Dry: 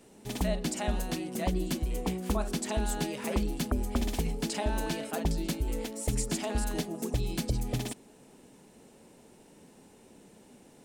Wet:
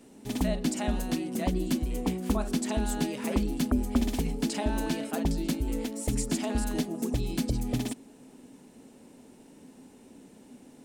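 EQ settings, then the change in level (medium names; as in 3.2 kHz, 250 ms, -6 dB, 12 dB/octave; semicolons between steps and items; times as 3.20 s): peaking EQ 260 Hz +10 dB 0.38 oct; 0.0 dB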